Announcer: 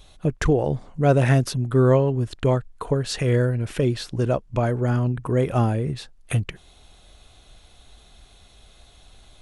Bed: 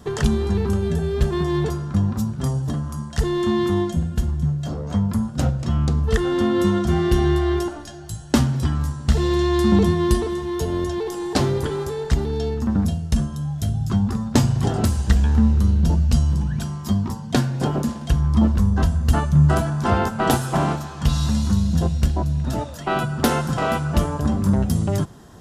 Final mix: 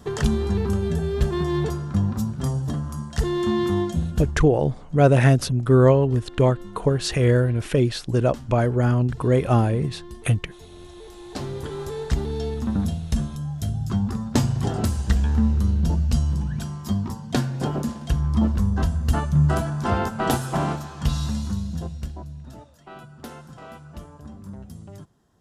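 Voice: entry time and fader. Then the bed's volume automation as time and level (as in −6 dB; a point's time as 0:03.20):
3.95 s, +2.0 dB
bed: 0:04.20 −2 dB
0:04.67 −22 dB
0:10.72 −22 dB
0:11.96 −3.5 dB
0:21.08 −3.5 dB
0:22.79 −20 dB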